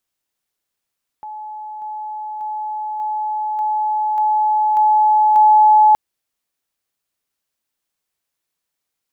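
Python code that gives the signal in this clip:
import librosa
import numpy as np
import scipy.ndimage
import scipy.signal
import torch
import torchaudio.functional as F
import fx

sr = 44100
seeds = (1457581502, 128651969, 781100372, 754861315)

y = fx.level_ladder(sr, hz=855.0, from_db=-28.0, step_db=3.0, steps=8, dwell_s=0.59, gap_s=0.0)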